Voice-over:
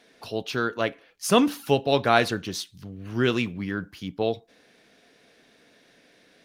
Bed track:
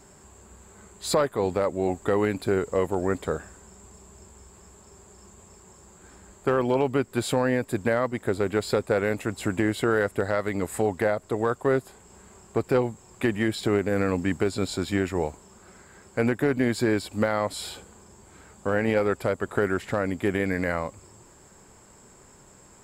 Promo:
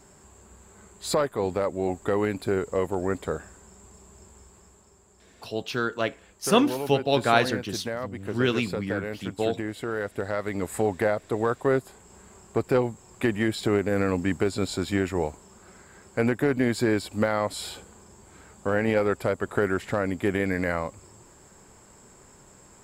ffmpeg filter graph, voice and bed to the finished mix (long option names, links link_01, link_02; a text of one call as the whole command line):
ffmpeg -i stem1.wav -i stem2.wav -filter_complex "[0:a]adelay=5200,volume=-1dB[link_01];[1:a]volume=6.5dB,afade=type=out:start_time=4.37:duration=0.62:silence=0.473151,afade=type=in:start_time=9.87:duration=0.99:silence=0.398107[link_02];[link_01][link_02]amix=inputs=2:normalize=0" out.wav